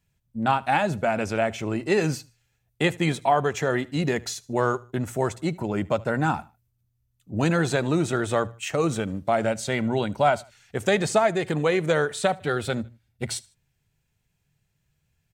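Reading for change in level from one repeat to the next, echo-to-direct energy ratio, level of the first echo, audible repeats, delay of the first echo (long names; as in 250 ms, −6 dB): −9.0 dB, −22.5 dB, −23.0 dB, 2, 76 ms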